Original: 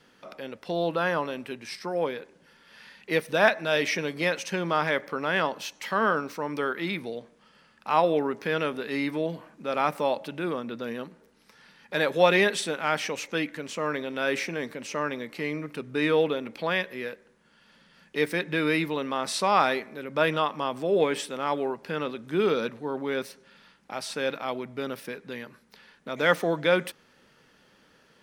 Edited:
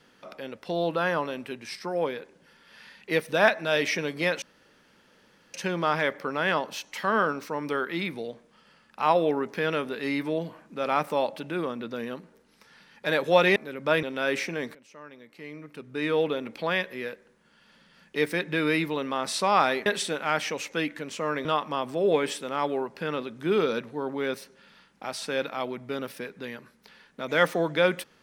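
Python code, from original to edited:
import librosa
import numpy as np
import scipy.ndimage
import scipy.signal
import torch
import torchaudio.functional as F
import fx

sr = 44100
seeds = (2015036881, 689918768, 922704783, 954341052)

y = fx.edit(x, sr, fx.insert_room_tone(at_s=4.42, length_s=1.12),
    fx.swap(start_s=12.44, length_s=1.59, other_s=19.86, other_length_s=0.47),
    fx.fade_in_from(start_s=14.75, length_s=1.64, curve='qua', floor_db=-18.5), tone=tone)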